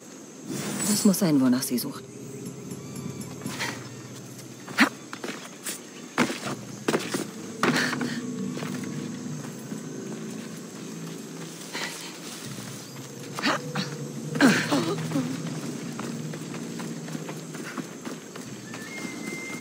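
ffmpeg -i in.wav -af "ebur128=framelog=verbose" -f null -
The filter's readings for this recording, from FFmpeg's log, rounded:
Integrated loudness:
  I:         -29.3 LUFS
  Threshold: -39.5 LUFS
Loudness range:
  LRA:         9.0 LU
  Threshold: -49.8 LUFS
  LRA low:   -35.7 LUFS
  LRA high:  -26.7 LUFS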